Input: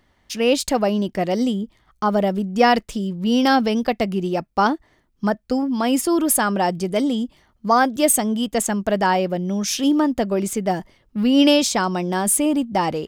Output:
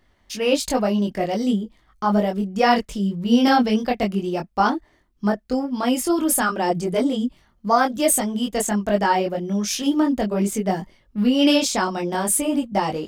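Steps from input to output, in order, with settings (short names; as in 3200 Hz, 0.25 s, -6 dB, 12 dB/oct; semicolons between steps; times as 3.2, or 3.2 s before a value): chorus voices 6, 1.2 Hz, delay 22 ms, depth 3 ms; gain +1.5 dB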